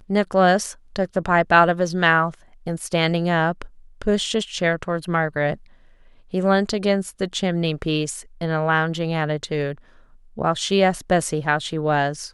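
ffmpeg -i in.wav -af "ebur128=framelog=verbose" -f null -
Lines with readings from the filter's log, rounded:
Integrated loudness:
  I:         -21.3 LUFS
  Threshold: -31.7 LUFS
Loudness range:
  LRA:         4.1 LU
  Threshold: -42.3 LUFS
  LRA low:   -24.0 LUFS
  LRA high:  -19.8 LUFS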